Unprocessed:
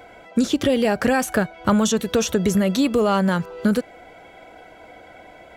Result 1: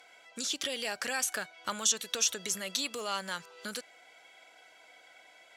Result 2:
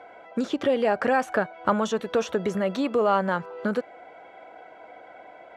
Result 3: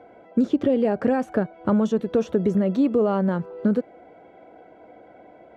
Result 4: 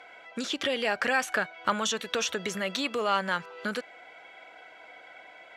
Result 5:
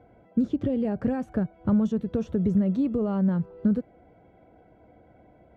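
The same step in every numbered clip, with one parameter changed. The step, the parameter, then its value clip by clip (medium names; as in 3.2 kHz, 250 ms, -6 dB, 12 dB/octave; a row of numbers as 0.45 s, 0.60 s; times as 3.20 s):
band-pass filter, frequency: 6.4 kHz, 880 Hz, 340 Hz, 2.3 kHz, 110 Hz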